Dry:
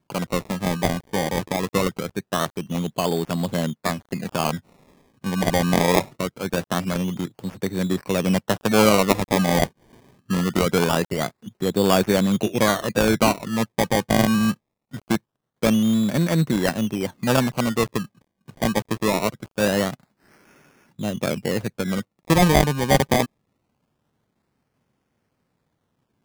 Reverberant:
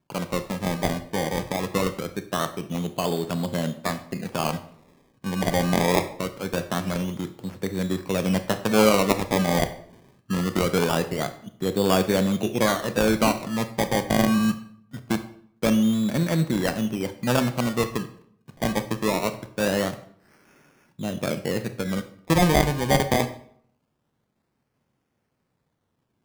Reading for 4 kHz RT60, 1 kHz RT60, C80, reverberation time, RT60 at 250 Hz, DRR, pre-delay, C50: 0.45 s, 0.60 s, 16.0 dB, 0.60 s, 0.70 s, 9.5 dB, 25 ms, 13.0 dB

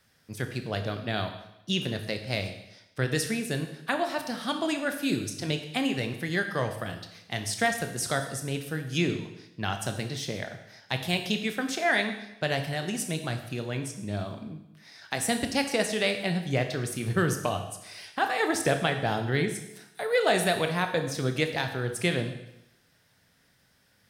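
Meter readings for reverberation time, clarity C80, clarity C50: 0.85 s, 10.5 dB, 8.5 dB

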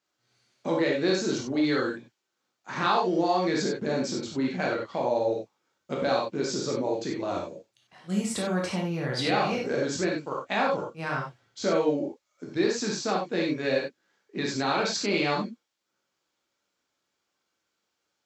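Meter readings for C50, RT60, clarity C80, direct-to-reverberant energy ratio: 3.0 dB, no single decay rate, 8.5 dB, -2.5 dB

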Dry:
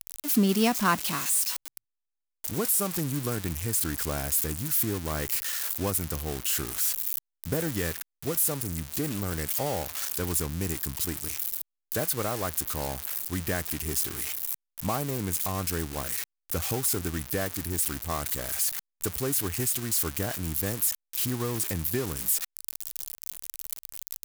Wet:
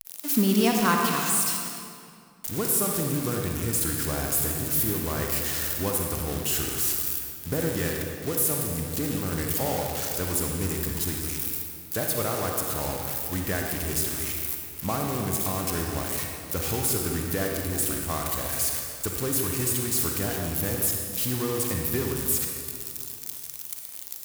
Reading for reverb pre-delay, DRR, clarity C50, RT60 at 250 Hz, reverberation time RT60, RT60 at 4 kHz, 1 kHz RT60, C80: 36 ms, 0.5 dB, 1.0 dB, 2.7 s, 2.3 s, 1.7 s, 2.2 s, 2.5 dB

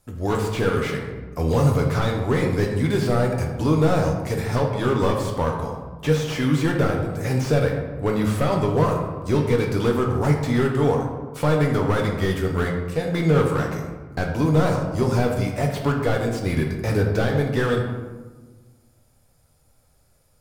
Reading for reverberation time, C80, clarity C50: 1.3 s, 6.5 dB, 4.5 dB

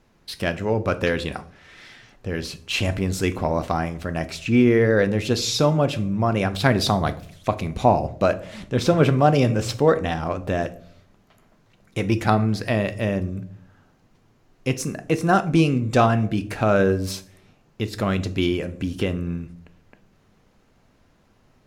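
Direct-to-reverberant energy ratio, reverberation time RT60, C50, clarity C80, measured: 11.0 dB, 0.60 s, 17.5 dB, 21.0 dB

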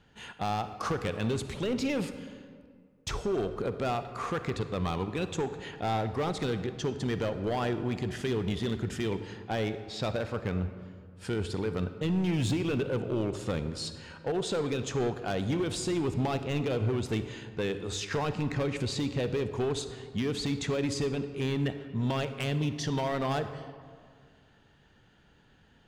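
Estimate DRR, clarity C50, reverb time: 10.0 dB, 10.5 dB, 2.0 s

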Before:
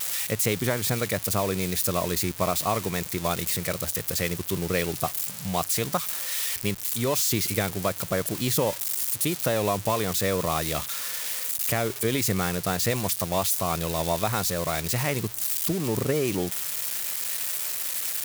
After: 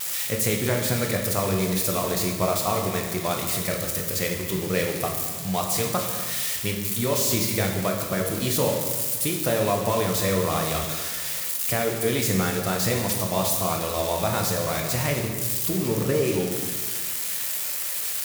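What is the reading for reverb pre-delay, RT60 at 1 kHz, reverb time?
10 ms, 1.4 s, 1.5 s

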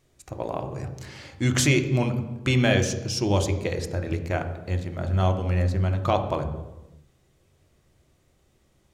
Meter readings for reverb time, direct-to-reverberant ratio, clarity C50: 1.1 s, 6.0 dB, 9.5 dB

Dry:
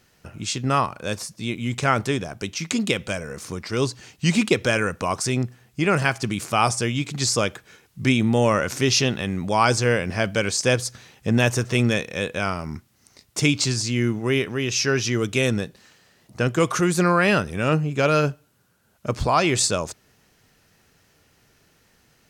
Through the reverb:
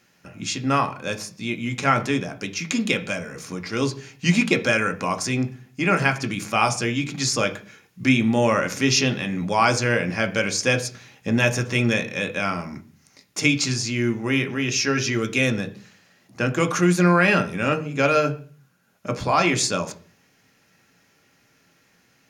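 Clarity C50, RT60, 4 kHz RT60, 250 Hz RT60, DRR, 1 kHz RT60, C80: 16.0 dB, 0.40 s, 0.45 s, 0.60 s, 5.0 dB, 0.35 s, 20.0 dB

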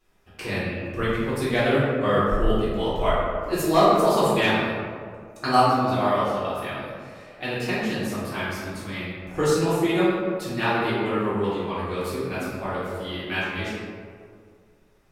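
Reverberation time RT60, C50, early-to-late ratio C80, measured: 2.2 s, -2.5 dB, 0.5 dB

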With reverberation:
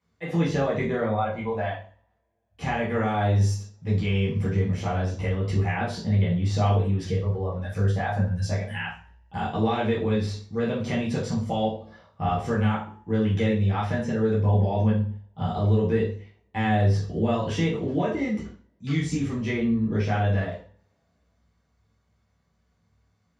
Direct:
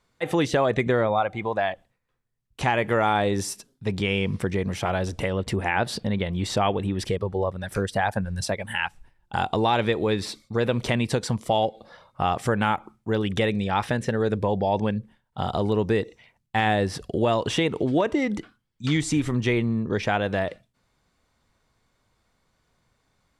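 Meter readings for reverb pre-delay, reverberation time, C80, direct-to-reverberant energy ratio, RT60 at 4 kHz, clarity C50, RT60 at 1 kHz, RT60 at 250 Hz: 3 ms, 0.45 s, 11.0 dB, -6.5 dB, 0.40 s, 5.5 dB, 0.50 s, 0.50 s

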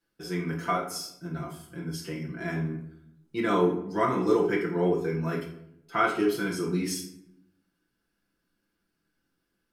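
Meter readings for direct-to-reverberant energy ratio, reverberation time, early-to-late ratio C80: -4.0 dB, 0.75 s, 10.0 dB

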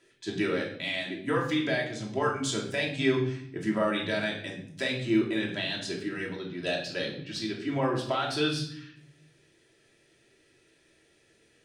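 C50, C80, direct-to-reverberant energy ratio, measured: 6.5 dB, 10.0 dB, -2.5 dB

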